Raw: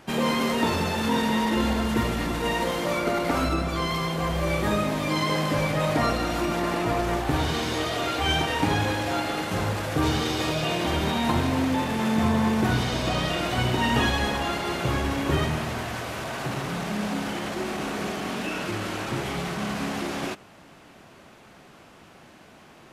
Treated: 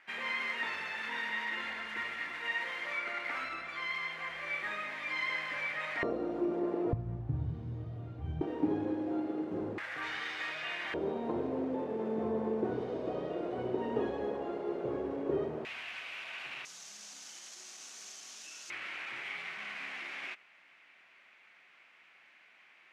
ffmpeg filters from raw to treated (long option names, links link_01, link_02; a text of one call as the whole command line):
ffmpeg -i in.wav -af "asetnsamples=nb_out_samples=441:pad=0,asendcmd='6.03 bandpass f 400;6.93 bandpass f 110;8.41 bandpass f 340;9.78 bandpass f 1900;10.94 bandpass f 430;15.65 bandpass f 2500;16.65 bandpass f 6300;18.7 bandpass f 2200',bandpass=frequency=2000:width_type=q:width=3.5:csg=0" out.wav